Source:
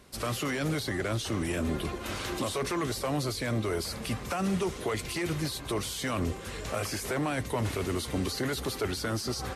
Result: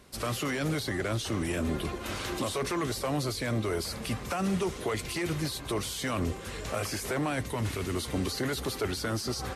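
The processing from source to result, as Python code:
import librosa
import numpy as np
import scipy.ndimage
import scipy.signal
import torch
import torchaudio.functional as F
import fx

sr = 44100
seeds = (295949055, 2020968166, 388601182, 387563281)

y = fx.peak_eq(x, sr, hz=620.0, db=-5.0, octaves=1.5, at=(7.5, 7.95))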